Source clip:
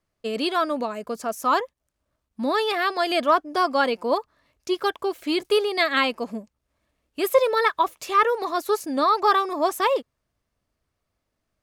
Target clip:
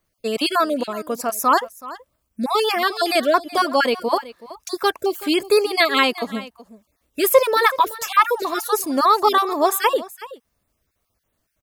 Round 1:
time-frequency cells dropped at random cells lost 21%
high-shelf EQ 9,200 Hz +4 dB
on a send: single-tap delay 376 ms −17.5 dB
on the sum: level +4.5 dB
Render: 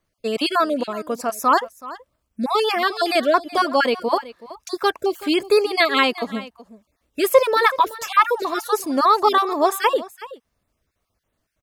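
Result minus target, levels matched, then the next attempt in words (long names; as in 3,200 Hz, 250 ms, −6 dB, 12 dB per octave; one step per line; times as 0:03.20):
8,000 Hz band −4.5 dB
time-frequency cells dropped at random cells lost 21%
high-shelf EQ 9,200 Hz +14.5 dB
on a send: single-tap delay 376 ms −17.5 dB
on the sum: level +4.5 dB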